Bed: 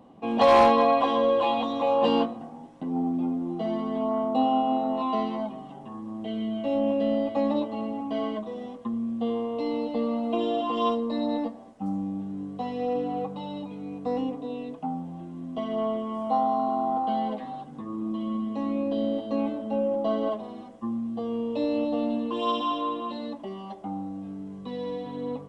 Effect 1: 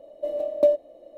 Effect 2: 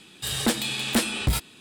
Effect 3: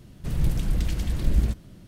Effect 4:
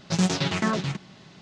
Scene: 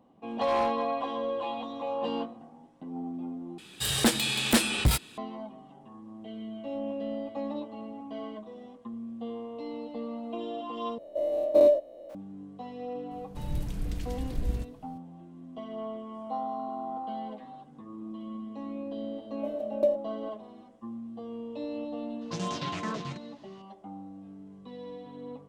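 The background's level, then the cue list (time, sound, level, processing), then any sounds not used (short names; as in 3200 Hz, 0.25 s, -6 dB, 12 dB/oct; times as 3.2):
bed -9.5 dB
3.58 replace with 2
10.98 replace with 1 -4 dB + spectral dilation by 0.12 s
13.11 add 3 -9 dB
19.2 add 1 -6.5 dB
22.21 add 4 -10 dB + limiter -14 dBFS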